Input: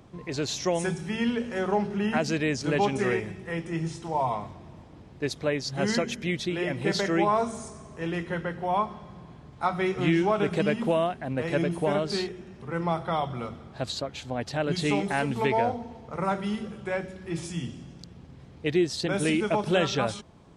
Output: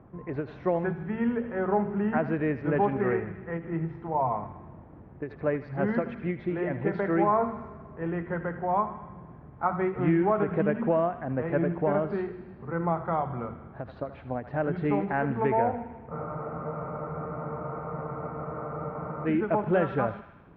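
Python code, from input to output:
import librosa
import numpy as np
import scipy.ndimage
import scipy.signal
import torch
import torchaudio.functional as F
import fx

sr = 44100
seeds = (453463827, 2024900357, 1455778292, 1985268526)

y = scipy.signal.sosfilt(scipy.signal.butter(4, 1700.0, 'lowpass', fs=sr, output='sos'), x)
y = fx.echo_thinned(y, sr, ms=78, feedback_pct=74, hz=940.0, wet_db=-11.5)
y = fx.spec_freeze(y, sr, seeds[0], at_s=16.13, hold_s=3.12)
y = fx.end_taper(y, sr, db_per_s=200.0)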